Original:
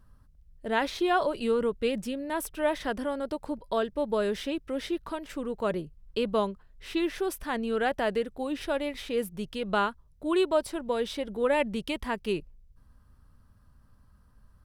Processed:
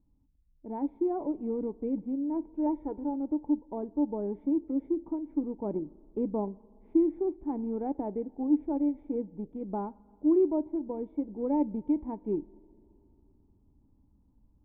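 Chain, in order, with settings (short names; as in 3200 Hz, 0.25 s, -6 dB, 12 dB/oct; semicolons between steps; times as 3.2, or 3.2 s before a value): 2.66–3.14 comb 2.2 ms, depth 58%; two-slope reverb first 0.24 s, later 2.9 s, from -18 dB, DRR 15 dB; in parallel at -9 dB: sample gate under -27.5 dBFS; on the sum: vocal tract filter u; vocal rider within 3 dB 2 s; gain +5 dB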